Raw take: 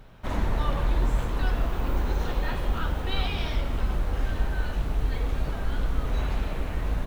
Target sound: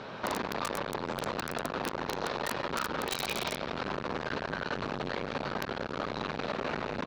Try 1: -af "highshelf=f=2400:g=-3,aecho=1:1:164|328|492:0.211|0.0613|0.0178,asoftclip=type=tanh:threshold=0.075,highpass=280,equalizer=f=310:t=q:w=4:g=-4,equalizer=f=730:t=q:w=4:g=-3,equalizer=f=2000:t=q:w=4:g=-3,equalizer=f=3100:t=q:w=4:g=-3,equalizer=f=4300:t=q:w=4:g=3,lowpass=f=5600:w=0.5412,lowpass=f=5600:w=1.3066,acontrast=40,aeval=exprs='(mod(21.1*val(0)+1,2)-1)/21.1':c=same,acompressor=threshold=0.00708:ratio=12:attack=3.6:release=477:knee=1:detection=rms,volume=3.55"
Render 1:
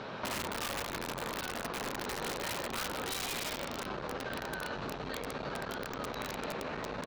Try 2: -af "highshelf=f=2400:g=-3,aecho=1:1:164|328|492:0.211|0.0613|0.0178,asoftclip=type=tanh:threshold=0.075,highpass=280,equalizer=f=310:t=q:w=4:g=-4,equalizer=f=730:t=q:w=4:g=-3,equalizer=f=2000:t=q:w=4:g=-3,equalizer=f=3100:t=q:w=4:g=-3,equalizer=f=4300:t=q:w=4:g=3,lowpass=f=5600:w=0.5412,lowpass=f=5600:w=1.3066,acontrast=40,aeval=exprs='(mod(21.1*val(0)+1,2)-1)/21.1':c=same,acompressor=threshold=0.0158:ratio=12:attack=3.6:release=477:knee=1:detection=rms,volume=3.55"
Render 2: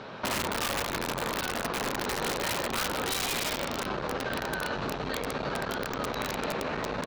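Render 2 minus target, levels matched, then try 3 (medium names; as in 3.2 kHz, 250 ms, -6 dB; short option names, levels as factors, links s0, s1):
saturation: distortion -7 dB
-af "highshelf=f=2400:g=-3,aecho=1:1:164|328|492:0.211|0.0613|0.0178,asoftclip=type=tanh:threshold=0.0211,highpass=280,equalizer=f=310:t=q:w=4:g=-4,equalizer=f=730:t=q:w=4:g=-3,equalizer=f=2000:t=q:w=4:g=-3,equalizer=f=3100:t=q:w=4:g=-3,equalizer=f=4300:t=q:w=4:g=3,lowpass=f=5600:w=0.5412,lowpass=f=5600:w=1.3066,acontrast=40,aeval=exprs='(mod(21.1*val(0)+1,2)-1)/21.1':c=same,acompressor=threshold=0.0158:ratio=12:attack=3.6:release=477:knee=1:detection=rms,volume=3.55"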